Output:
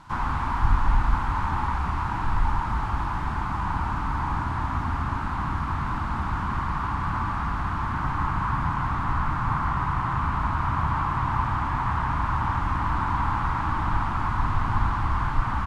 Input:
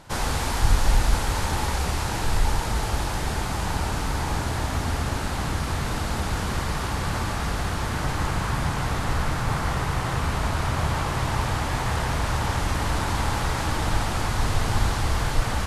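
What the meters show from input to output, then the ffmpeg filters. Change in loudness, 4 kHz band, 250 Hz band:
-0.5 dB, -13.5 dB, -2.0 dB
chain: -filter_complex "[0:a]firequalizer=gain_entry='entry(290,0);entry(480,-16);entry(1000,9);entry(1800,-2);entry(13000,-13)':delay=0.05:min_phase=1,acrossover=split=2600[a][b];[b]acompressor=threshold=-55dB:ratio=4:attack=1:release=60[c];[a][c]amix=inputs=2:normalize=0,volume=-1.5dB"

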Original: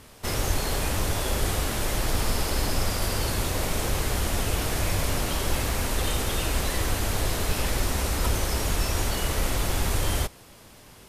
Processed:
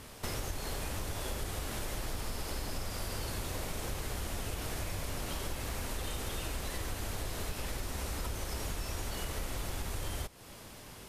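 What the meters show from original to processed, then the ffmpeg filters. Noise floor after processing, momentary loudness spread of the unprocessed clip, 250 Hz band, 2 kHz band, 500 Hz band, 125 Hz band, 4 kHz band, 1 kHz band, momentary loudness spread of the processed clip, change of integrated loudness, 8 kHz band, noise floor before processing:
-50 dBFS, 1 LU, -11.5 dB, -11.5 dB, -11.5 dB, -11.5 dB, -11.5 dB, -11.5 dB, 1 LU, -11.5 dB, -11.5 dB, -50 dBFS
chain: -af "acompressor=threshold=-35dB:ratio=5"

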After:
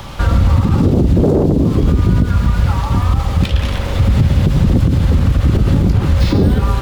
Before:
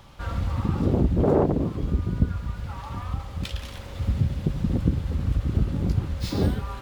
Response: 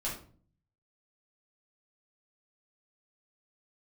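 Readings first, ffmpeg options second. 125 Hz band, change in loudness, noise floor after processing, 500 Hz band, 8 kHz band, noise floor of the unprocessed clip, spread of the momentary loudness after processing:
+13.0 dB, +12.5 dB, -20 dBFS, +8.5 dB, n/a, -39 dBFS, 3 LU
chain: -filter_complex "[0:a]acrossover=split=470|3500[a][b][c];[a]acompressor=threshold=-24dB:ratio=4[d];[b]acompressor=threshold=-44dB:ratio=4[e];[c]acompressor=threshold=-56dB:ratio=4[f];[d][e][f]amix=inputs=3:normalize=0,asplit=2[g][h];[1:a]atrim=start_sample=2205,asetrate=34398,aresample=44100,adelay=95[i];[h][i]afir=irnorm=-1:irlink=0,volume=-21.5dB[j];[g][j]amix=inputs=2:normalize=0,alimiter=level_in=22.5dB:limit=-1dB:release=50:level=0:latency=1,volume=-3dB"

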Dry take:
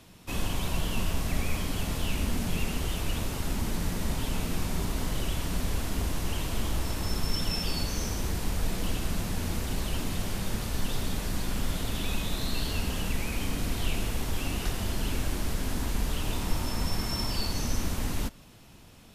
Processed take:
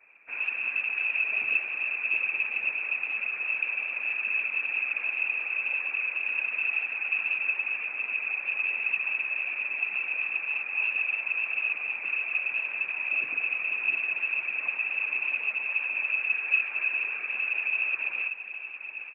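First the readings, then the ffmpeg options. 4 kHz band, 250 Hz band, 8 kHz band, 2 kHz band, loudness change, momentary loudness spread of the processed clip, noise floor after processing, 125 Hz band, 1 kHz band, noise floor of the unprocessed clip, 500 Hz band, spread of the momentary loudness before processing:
-12.0 dB, under -25 dB, under -40 dB, +15.5 dB, +5.0 dB, 3 LU, -39 dBFS, under -35 dB, -7.0 dB, -51 dBFS, -13.5 dB, 2 LU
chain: -filter_complex "[0:a]lowshelf=f=220:g=10.5,lowpass=f=2.2k:t=q:w=0.5098,lowpass=f=2.2k:t=q:w=0.6013,lowpass=f=2.2k:t=q:w=0.9,lowpass=f=2.2k:t=q:w=2.563,afreqshift=-2600,acrossover=split=210 2000:gain=0.0794 1 0.158[a][b][c];[a][b][c]amix=inputs=3:normalize=0,aecho=1:1:817|1634|2451|3268:0.316|0.126|0.0506|0.0202,afftfilt=real='hypot(re,im)*cos(2*PI*random(0))':imag='hypot(re,im)*sin(2*PI*random(1))':win_size=512:overlap=0.75,volume=2.5dB"

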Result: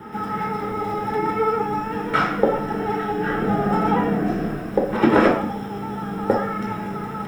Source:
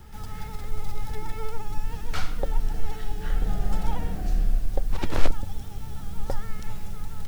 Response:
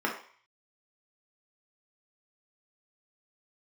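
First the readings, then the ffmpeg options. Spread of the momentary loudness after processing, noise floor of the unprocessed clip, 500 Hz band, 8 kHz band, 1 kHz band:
10 LU, -36 dBFS, +17.5 dB, n/a, +16.5 dB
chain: -filter_complex "[0:a]highpass=f=140:p=1,highshelf=f=2.2k:g=-8.5,bandreject=f=930:w=9.4[a];[1:a]atrim=start_sample=2205[b];[a][b]afir=irnorm=-1:irlink=0,volume=8dB"

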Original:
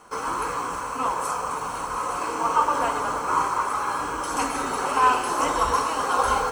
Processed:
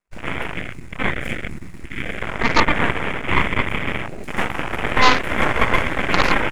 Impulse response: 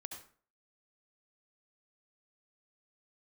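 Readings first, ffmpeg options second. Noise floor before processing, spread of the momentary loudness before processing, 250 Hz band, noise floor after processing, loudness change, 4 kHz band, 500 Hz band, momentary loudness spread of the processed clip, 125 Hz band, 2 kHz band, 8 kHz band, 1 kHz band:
-31 dBFS, 8 LU, +8.5 dB, -34 dBFS, +3.5 dB, +9.5 dB, +3.5 dB, 13 LU, +14.5 dB, +11.0 dB, -6.0 dB, -1.5 dB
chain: -af "aeval=exprs='0.447*(cos(1*acos(clip(val(0)/0.447,-1,1)))-cos(1*PI/2))+0.0708*(cos(3*acos(clip(val(0)/0.447,-1,1)))-cos(3*PI/2))+0.0562*(cos(4*acos(clip(val(0)/0.447,-1,1)))-cos(4*PI/2))+0.178*(cos(6*acos(clip(val(0)/0.447,-1,1)))-cos(6*PI/2))+0.0316*(cos(7*acos(clip(val(0)/0.447,-1,1)))-cos(7*PI/2))':c=same,afwtdn=0.0355,volume=4.5dB"

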